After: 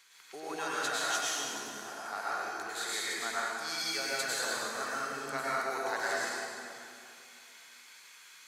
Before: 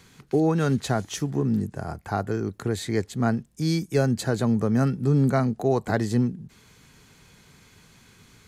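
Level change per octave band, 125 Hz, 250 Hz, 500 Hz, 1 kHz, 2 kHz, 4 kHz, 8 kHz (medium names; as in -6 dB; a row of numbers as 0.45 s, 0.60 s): -35.0 dB, -24.0 dB, -12.5 dB, -2.5 dB, +3.0 dB, +3.0 dB, +3.0 dB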